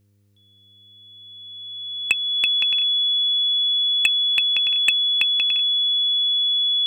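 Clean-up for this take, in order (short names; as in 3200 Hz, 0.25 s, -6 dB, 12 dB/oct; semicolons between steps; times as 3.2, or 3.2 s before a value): clip repair -8.5 dBFS; de-hum 100.9 Hz, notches 5; notch 3400 Hz, Q 30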